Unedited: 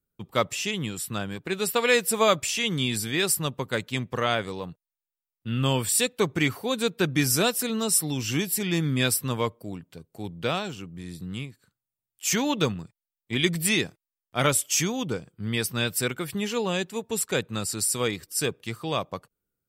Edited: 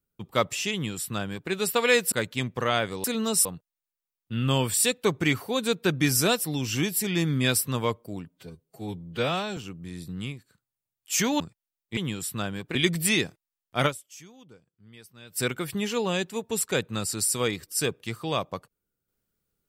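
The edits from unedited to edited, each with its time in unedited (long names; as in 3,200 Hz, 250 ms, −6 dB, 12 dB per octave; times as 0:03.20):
0:00.73–0:01.51: duplicate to 0:13.35
0:02.12–0:03.68: remove
0:07.59–0:08.00: move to 0:04.60
0:09.84–0:10.70: time-stretch 1.5×
0:12.53–0:12.78: remove
0:14.46–0:16.00: duck −22.5 dB, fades 0.41 s exponential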